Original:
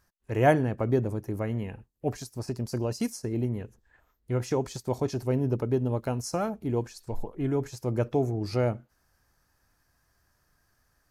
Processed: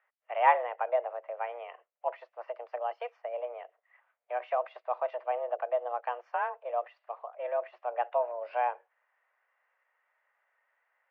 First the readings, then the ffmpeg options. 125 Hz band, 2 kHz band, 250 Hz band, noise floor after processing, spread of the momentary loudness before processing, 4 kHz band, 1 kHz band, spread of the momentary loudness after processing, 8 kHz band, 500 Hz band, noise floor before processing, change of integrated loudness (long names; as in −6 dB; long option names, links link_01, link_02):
below −40 dB, 0.0 dB, below −35 dB, −82 dBFS, 9 LU, below −10 dB, +5.5 dB, 13 LU, below −35 dB, −3.5 dB, −72 dBFS, −3.5 dB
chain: -af "highpass=frequency=320:width_type=q:width=0.5412,highpass=frequency=320:width_type=q:width=1.307,lowpass=frequency=2600:width_type=q:width=0.5176,lowpass=frequency=2600:width_type=q:width=0.7071,lowpass=frequency=2600:width_type=q:width=1.932,afreqshift=240,volume=-1dB"